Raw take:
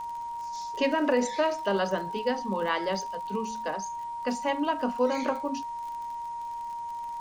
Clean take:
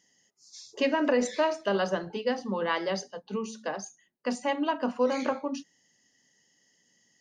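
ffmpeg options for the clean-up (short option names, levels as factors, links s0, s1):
-af "adeclick=t=4,bandreject=f=940:w=30,agate=range=0.0891:threshold=0.0398"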